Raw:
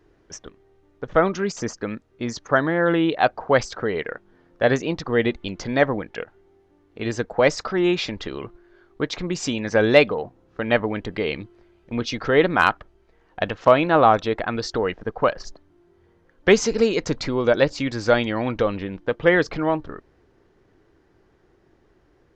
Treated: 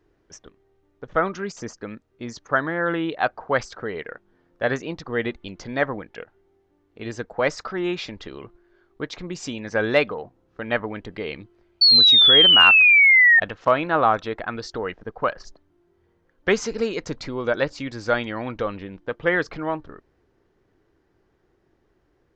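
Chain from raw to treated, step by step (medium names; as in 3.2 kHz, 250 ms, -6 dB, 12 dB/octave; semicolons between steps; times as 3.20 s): dynamic bell 1.4 kHz, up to +6 dB, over -32 dBFS, Q 1.2; painted sound fall, 11.81–13.40 s, 1.8–4.5 kHz -7 dBFS; trim -6 dB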